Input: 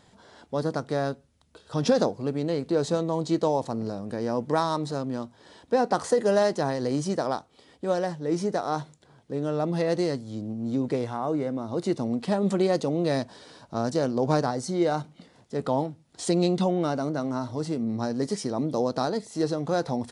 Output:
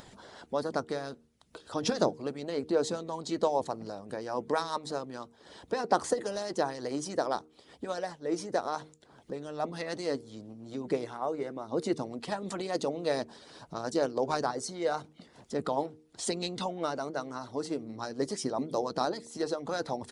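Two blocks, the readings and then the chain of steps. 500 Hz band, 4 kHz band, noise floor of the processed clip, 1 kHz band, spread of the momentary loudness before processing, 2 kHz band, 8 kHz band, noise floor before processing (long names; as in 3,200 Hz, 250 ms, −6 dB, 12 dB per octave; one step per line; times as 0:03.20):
−6.0 dB, −2.0 dB, −62 dBFS, −3.5 dB, 9 LU, −3.0 dB, −1.5 dB, −60 dBFS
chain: upward compression, threshold −38 dBFS
harmonic and percussive parts rebalanced harmonic −15 dB
hum removal 77.46 Hz, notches 6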